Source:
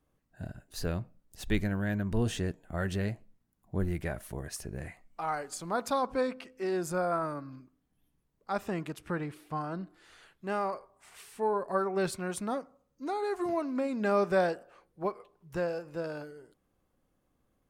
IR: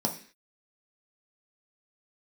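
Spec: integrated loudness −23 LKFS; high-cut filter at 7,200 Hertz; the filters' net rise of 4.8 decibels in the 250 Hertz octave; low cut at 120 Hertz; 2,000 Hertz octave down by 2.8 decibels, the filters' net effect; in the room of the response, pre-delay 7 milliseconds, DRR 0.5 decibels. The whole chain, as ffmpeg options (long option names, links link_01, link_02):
-filter_complex "[0:a]highpass=120,lowpass=7200,equalizer=frequency=250:width_type=o:gain=7,equalizer=frequency=2000:width_type=o:gain=-4,asplit=2[link_01][link_02];[1:a]atrim=start_sample=2205,adelay=7[link_03];[link_02][link_03]afir=irnorm=-1:irlink=0,volume=-7.5dB[link_04];[link_01][link_04]amix=inputs=2:normalize=0,volume=1.5dB"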